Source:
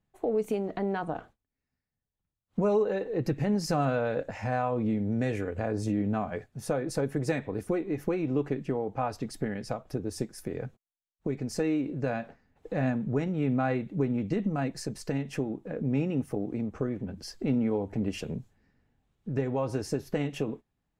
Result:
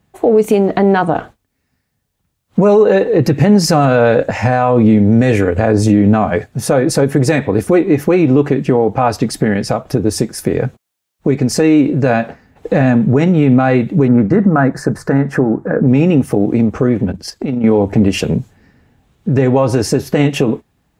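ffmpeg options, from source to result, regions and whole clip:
-filter_complex "[0:a]asettb=1/sr,asplit=3[s0][s1][s2];[s0]atrim=end=14.084[s3];[s1]atrim=start=14.08:end=15.88,asetpts=PTS-STARTPTS,afade=t=in:d=0.004:c=qsin,afade=t=out:st=1.796:d=0.004:c=qsin,highshelf=f=2100:t=q:w=3:g=-11,bandreject=f=50:t=h:w=6,bandreject=f=100:t=h:w=6,bandreject=f=150:t=h:w=6[s4];[s2]atrim=start=15.876[s5];[s3][s4]acrossfade=d=0.004:c1=hsin:c2=qsin[s6];[s6][s5]acrossfade=d=0.004:c1=qsin:c2=hsin,asettb=1/sr,asplit=3[s7][s8][s9];[s7]atrim=end=17.124[s10];[s8]atrim=start=17.12:end=17.64,asetpts=PTS-STARTPTS,afade=t=in:d=0.004:c=qsin,afade=t=out:st=0.516:d=0.004:c=qsin,agate=range=0.398:threshold=0.00794:ratio=16:release=100:detection=peak,tremolo=f=24:d=0.4,acompressor=threshold=0.0126:ratio=2.5:attack=3.2:release=140:knee=1:detection=peak[s11];[s9]atrim=start=17.636[s12];[s10][s11]acrossfade=d=0.004:c1=hsin:c2=qsin[s13];[s13][s12]acrossfade=d=0.004:c1=qsin:c2=hsin,highpass=47,acontrast=79,alimiter=level_in=5.01:limit=0.891:release=50:level=0:latency=1,volume=0.891"

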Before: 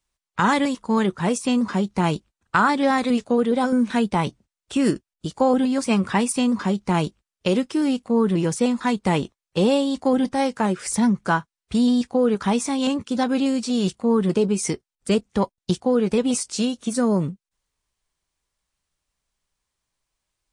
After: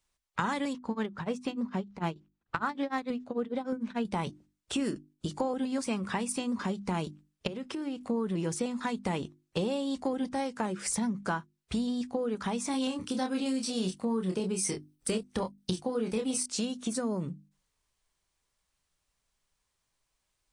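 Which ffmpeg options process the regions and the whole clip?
-filter_complex "[0:a]asettb=1/sr,asplit=3[s0][s1][s2];[s0]atrim=end=0.734[s3];[s1]atrim=start=0.73:end=4.05,asetpts=PTS-STARTPTS,afade=t=in:d=0.004:c=qsin,afade=t=out:st=3.316:d=0.004:c=qsin,tremolo=f=6.7:d=0.97,adynamicsmooth=sensitivity=2:basefreq=4700[s4];[s2]atrim=start=4.046[s5];[s3][s4]acrossfade=d=0.004:c1=hsin:c2=qsin[s6];[s6][s5]acrossfade=d=0.004:c1=qsin:c2=hsin,asettb=1/sr,asplit=3[s7][s8][s9];[s7]atrim=end=7.474[s10];[s8]atrim=start=7.47:end=8.01,asetpts=PTS-STARTPTS,afade=t=in:d=0.004:c=qsin,afade=t=out:st=0.536:d=0.004:c=qsin,bass=f=250:g=-2,treble=f=4000:g=-8,acompressor=threshold=0.0316:ratio=12:attack=3.2:release=140:knee=1:detection=peak[s11];[s9]atrim=start=8.006[s12];[s10][s11]acrossfade=d=0.004:c1=hsin:c2=qsin[s13];[s13][s12]acrossfade=d=0.004:c1=qsin:c2=hsin,asettb=1/sr,asplit=3[s14][s15][s16];[s14]atrim=end=12.714[s17];[s15]atrim=start=12.71:end=16.46,asetpts=PTS-STARTPTS,afade=t=in:d=0.004:c=qsin,afade=t=out:st=3.746:d=0.004:c=qsin,highshelf=f=5600:g=8.5,bandreject=f=7000:w=6.5,asplit=2[s18][s19];[s19]adelay=27,volume=0.562[s20];[s18][s20]amix=inputs=2:normalize=0,atrim=end_sample=165375[s21];[s16]atrim=start=16.456[s22];[s17][s21]acrossfade=d=0.004:c1=hsin:c2=qsin[s23];[s23][s22]acrossfade=d=0.004:c1=qsin:c2=hsin,acompressor=threshold=0.0355:ratio=5,bandreject=f=50:t=h:w=6,bandreject=f=100:t=h:w=6,bandreject=f=150:t=h:w=6,bandreject=f=200:t=h:w=6,bandreject=f=250:t=h:w=6,bandreject=f=300:t=h:w=6,bandreject=f=350:t=h:w=6"

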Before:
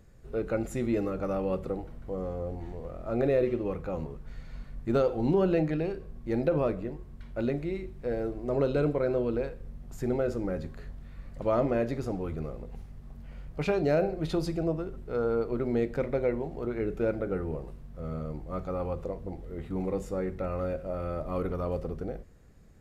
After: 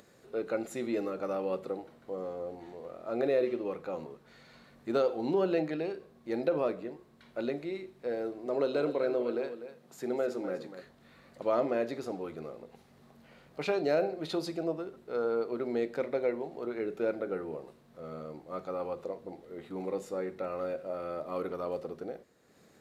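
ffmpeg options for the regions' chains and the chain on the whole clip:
-filter_complex "[0:a]asettb=1/sr,asplit=3[s0][s1][s2];[s0]atrim=end=8.464[s3];[s1]atrim=start=8.46:end=10.82,asetpts=PTS-STARTPTS,afade=t=in:d=0.004:c=qsin,afade=t=out:st=2.356:d=0.004:c=qsin,highpass=140,aecho=1:1:248:0.266,atrim=end_sample=104076[s4];[s2]atrim=start=10.816[s5];[s3][s4]acrossfade=d=0.004:c1=hsin:c2=qsin[s6];[s6][s5]acrossfade=d=0.004:c1=qsin:c2=hsin,highpass=290,equalizer=f=4000:t=o:w=0.4:g=5.5,acompressor=mode=upward:threshold=0.00282:ratio=2.5,volume=0.841"

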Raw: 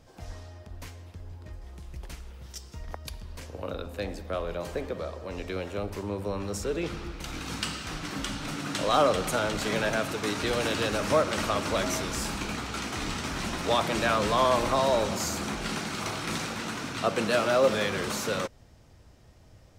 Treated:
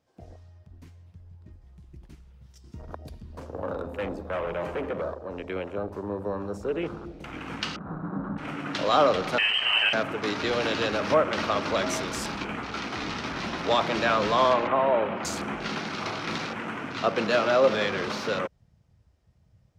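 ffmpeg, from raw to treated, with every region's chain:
-filter_complex "[0:a]asettb=1/sr,asplit=3[s0][s1][s2];[s0]atrim=end=2.644[s3];[s1]atrim=start=2.64:end=5.14,asetpts=PTS-STARTPTS,afade=t=in:d=0.004:c=qsin,afade=t=out:st=2.496:d=0.004:c=qsin,acontrast=25,asoftclip=type=hard:threshold=0.0398[s4];[s2]atrim=start=5.136[s5];[s3][s4]acrossfade=d=0.004:c1=hsin:c2=qsin[s6];[s6][s5]acrossfade=d=0.004:c1=qsin:c2=hsin,asettb=1/sr,asplit=3[s7][s8][s9];[s7]atrim=end=7.764[s10];[s8]atrim=start=7.76:end=8.38,asetpts=PTS-STARTPTS,afade=t=in:d=0.004:c=qsin,afade=t=out:st=0.616:d=0.004:c=qsin,lowpass=f=1500:w=0.5412,lowpass=f=1500:w=1.3066,equalizer=f=180:t=o:w=0.33:g=14[s11];[s9]atrim=start=8.376[s12];[s10][s11]acrossfade=d=0.004:c1=hsin:c2=qsin[s13];[s13][s12]acrossfade=d=0.004:c1=qsin:c2=hsin,asettb=1/sr,asplit=3[s14][s15][s16];[s14]atrim=end=9.384[s17];[s15]atrim=start=9.38:end=9.93,asetpts=PTS-STARTPTS,afade=t=in:d=0.004:c=qsin,afade=t=out:st=0.546:d=0.004:c=qsin,lowshelf=f=450:g=6,lowpass=f=2700:t=q:w=0.5098,lowpass=f=2700:t=q:w=0.6013,lowpass=f=2700:t=q:w=0.9,lowpass=f=2700:t=q:w=2.563,afreqshift=-3200,aeval=exprs='val(0)+0.00224*(sin(2*PI*60*n/s)+sin(2*PI*2*60*n/s)/2+sin(2*PI*3*60*n/s)/3+sin(2*PI*4*60*n/s)/4+sin(2*PI*5*60*n/s)/5)':c=same[s18];[s16]atrim=start=9.926[s19];[s17][s18]acrossfade=d=0.004:c1=hsin:c2=qsin[s20];[s20][s19]acrossfade=d=0.004:c1=qsin:c2=hsin,asettb=1/sr,asplit=3[s21][s22][s23];[s21]atrim=end=14.534[s24];[s22]atrim=start=14.53:end=15.25,asetpts=PTS-STARTPTS,afade=t=in:d=0.004:c=qsin,afade=t=out:st=0.716:d=0.004:c=qsin,lowpass=f=3500:w=0.5412,lowpass=f=3500:w=1.3066,lowshelf=f=96:g=-11.5[s25];[s23]atrim=start=15.246[s26];[s24][s25]acrossfade=d=0.004:c1=hsin:c2=qsin[s27];[s27][s26]acrossfade=d=0.004:c1=qsin:c2=hsin,afwtdn=0.01,highpass=f=180:p=1,highshelf=f=6700:g=-5,volume=1.33"

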